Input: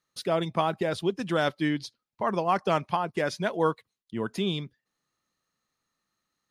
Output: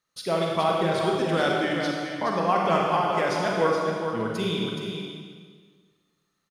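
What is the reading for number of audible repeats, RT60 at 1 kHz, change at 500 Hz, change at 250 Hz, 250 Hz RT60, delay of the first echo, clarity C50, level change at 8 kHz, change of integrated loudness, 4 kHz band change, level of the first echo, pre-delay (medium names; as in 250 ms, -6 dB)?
1, 1.6 s, +4.0 dB, +2.5 dB, 1.7 s, 422 ms, -1.5 dB, +4.0 dB, +3.5 dB, +4.5 dB, -7.0 dB, 35 ms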